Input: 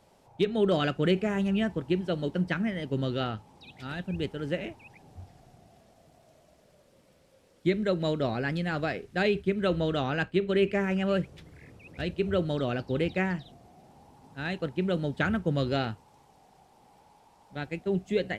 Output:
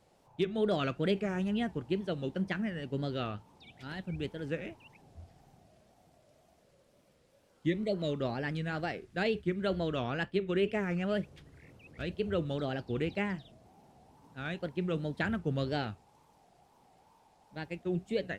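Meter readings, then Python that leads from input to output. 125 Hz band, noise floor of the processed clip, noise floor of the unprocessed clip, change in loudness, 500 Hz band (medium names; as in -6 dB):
-5.0 dB, -67 dBFS, -62 dBFS, -5.0 dB, -5.0 dB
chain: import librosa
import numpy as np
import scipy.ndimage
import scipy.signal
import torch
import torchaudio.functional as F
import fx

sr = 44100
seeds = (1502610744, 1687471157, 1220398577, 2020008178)

y = fx.spec_repair(x, sr, seeds[0], start_s=7.41, length_s=0.7, low_hz=760.0, high_hz=1800.0, source='both')
y = fx.wow_flutter(y, sr, seeds[1], rate_hz=2.1, depth_cents=140.0)
y = y * librosa.db_to_amplitude(-5.0)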